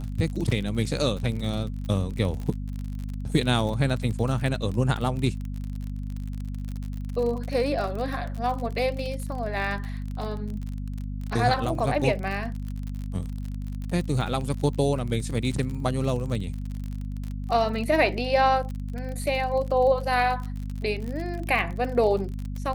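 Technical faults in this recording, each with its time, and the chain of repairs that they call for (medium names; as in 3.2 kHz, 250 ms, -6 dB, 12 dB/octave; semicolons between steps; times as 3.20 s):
crackle 43 per s -31 dBFS
hum 50 Hz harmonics 5 -32 dBFS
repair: de-click; de-hum 50 Hz, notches 5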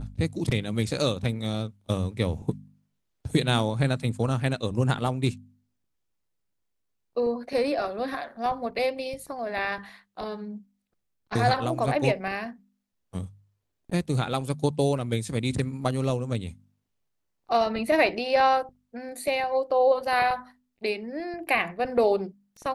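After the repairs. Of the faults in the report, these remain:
nothing left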